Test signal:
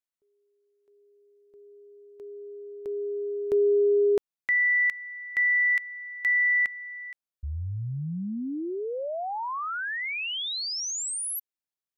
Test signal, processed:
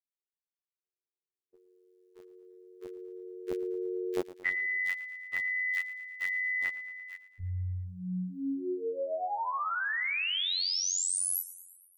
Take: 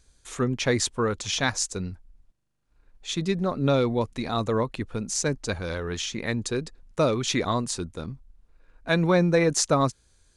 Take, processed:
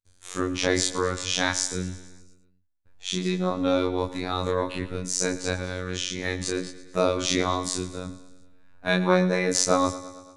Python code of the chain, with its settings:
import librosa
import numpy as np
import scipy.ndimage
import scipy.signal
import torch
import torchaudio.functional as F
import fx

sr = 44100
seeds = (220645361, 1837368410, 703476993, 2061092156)

p1 = fx.spec_dilate(x, sr, span_ms=60)
p2 = fx.gate_hold(p1, sr, open_db=-47.0, close_db=-54.0, hold_ms=71.0, range_db=-36, attack_ms=5.1, release_ms=461.0)
p3 = fx.robotise(p2, sr, hz=91.3)
p4 = p3 + fx.echo_feedback(p3, sr, ms=113, feedback_pct=60, wet_db=-16, dry=0)
y = p4 * librosa.db_to_amplitude(-1.0)